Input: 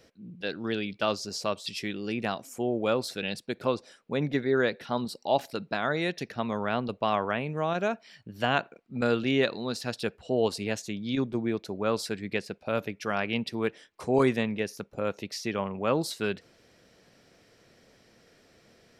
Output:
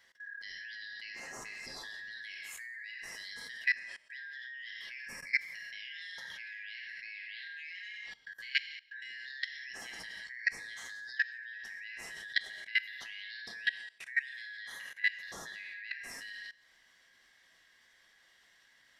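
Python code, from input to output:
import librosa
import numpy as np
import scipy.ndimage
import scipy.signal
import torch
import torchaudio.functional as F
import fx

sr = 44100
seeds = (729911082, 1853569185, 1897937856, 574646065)

y = fx.band_shuffle(x, sr, order='4123')
y = fx.high_shelf(y, sr, hz=2800.0, db=3.0)
y = fx.rev_gated(y, sr, seeds[0], gate_ms=220, shape='falling', drr_db=0.0)
y = fx.rider(y, sr, range_db=5, speed_s=0.5)
y = y + 10.0 ** (-16.0 / 20.0) * np.pad(y, (int(174 * sr / 1000.0), 0))[:len(y)]
y = fx.level_steps(y, sr, step_db=20)
y = y * librosa.db_to_amplitude(-5.5)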